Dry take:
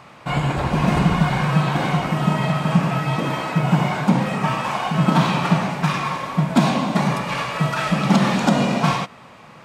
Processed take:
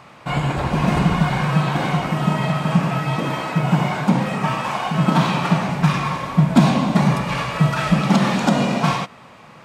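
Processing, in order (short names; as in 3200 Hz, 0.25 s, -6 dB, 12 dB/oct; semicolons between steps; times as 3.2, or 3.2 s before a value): 5.69–8.01 low shelf 140 Hz +11 dB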